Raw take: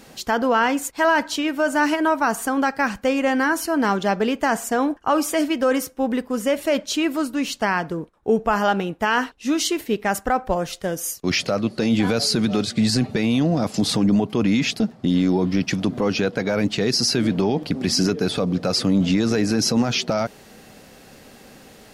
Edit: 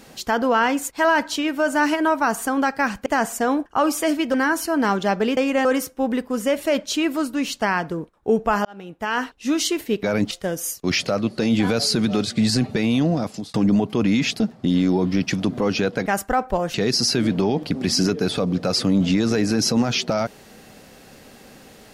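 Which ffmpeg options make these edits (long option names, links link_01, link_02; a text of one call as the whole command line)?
ffmpeg -i in.wav -filter_complex "[0:a]asplit=11[link_01][link_02][link_03][link_04][link_05][link_06][link_07][link_08][link_09][link_10][link_11];[link_01]atrim=end=3.062[link_12];[link_02]atrim=start=4.368:end=5.652[link_13];[link_03]atrim=start=3.338:end=4.372[link_14];[link_04]atrim=start=3.058:end=3.342[link_15];[link_05]atrim=start=5.648:end=8.65,asetpts=PTS-STARTPTS,afade=type=out:start_time=2.998:duration=0.004:curve=hsin[link_16];[link_06]atrim=start=8.65:end=10.032,asetpts=PTS-STARTPTS,afade=type=in:duration=0.73[link_17];[link_07]atrim=start=16.458:end=16.742[link_18];[link_08]atrim=start=10.708:end=13.94,asetpts=PTS-STARTPTS,afade=type=out:start_time=2.792:duration=0.44[link_19];[link_09]atrim=start=13.94:end=16.462,asetpts=PTS-STARTPTS,afade=type=in:duration=0.004:curve=hsin[link_20];[link_10]atrim=start=10.028:end=10.712[link_21];[link_11]atrim=start=16.738[link_22];[link_12][link_13]acrossfade=duration=0.004:curve1=hsin:curve2=hsin[link_23];[link_23][link_14]acrossfade=duration=0.004:curve1=hsin:curve2=hsin[link_24];[link_24][link_15]acrossfade=duration=0.004:curve1=hsin:curve2=hsin[link_25];[link_16][link_17]concat=n=2:v=0:a=1[link_26];[link_25][link_26]acrossfade=duration=0.004:curve1=hsin:curve2=hsin[link_27];[link_27][link_18]acrossfade=duration=0.004:curve1=hsin:curve2=hsin[link_28];[link_19][link_20]concat=n=2:v=0:a=1[link_29];[link_28][link_29]acrossfade=duration=0.004:curve1=hsin:curve2=hsin[link_30];[link_30][link_21]acrossfade=duration=0.004:curve1=hsin:curve2=hsin[link_31];[link_31][link_22]acrossfade=duration=0.004:curve1=hsin:curve2=hsin" out.wav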